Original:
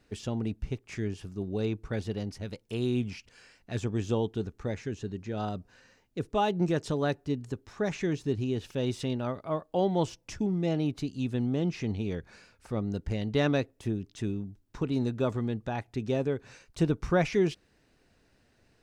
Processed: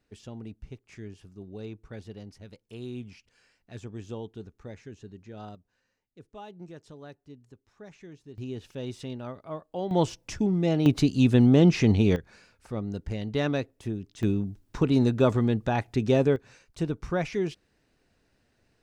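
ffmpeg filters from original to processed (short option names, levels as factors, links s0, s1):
-af "asetnsamples=n=441:p=0,asendcmd='5.55 volume volume -17dB;8.38 volume volume -5.5dB;9.91 volume volume 4dB;10.86 volume volume 11dB;12.16 volume volume -1dB;14.23 volume volume 7dB;16.36 volume volume -3dB',volume=0.355"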